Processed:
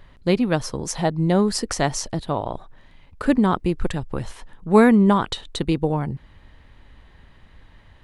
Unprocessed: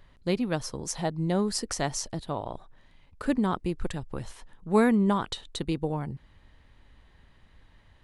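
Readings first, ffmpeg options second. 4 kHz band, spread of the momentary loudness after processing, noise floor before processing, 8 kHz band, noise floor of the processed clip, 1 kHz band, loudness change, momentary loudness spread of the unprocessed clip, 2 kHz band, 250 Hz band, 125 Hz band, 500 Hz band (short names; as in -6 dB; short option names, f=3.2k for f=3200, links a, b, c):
+6.0 dB, 16 LU, -59 dBFS, +4.5 dB, -51 dBFS, +8.0 dB, +7.5 dB, 16 LU, +8.0 dB, +8.0 dB, +8.0 dB, +8.0 dB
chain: -af "bass=f=250:g=0,treble=f=4k:g=-4,volume=8dB"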